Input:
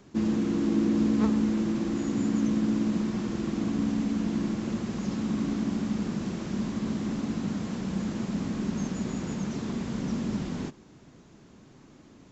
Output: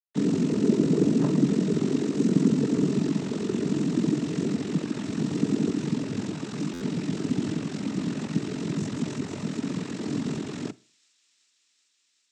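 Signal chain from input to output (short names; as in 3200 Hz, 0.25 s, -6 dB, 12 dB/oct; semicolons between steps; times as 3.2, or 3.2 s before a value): dynamic EQ 280 Hz, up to +8 dB, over -39 dBFS, Q 1.3; bit-crush 6-bit; ring modulator 22 Hz; noise vocoder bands 12; thin delay 0.378 s, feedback 84%, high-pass 3600 Hz, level -22.5 dB; on a send at -21.5 dB: reverb, pre-delay 39 ms; on the sum: stuck buffer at 6.73, samples 512, times 6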